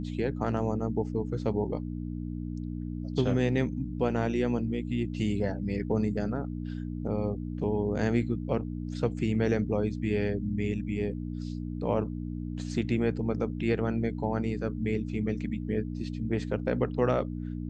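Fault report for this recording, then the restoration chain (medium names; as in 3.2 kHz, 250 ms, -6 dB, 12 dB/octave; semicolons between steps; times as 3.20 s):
hum 60 Hz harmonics 5 -35 dBFS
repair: de-hum 60 Hz, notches 5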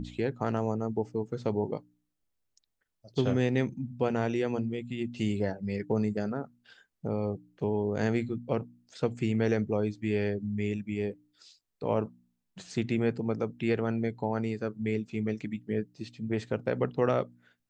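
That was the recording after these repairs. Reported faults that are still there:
nothing left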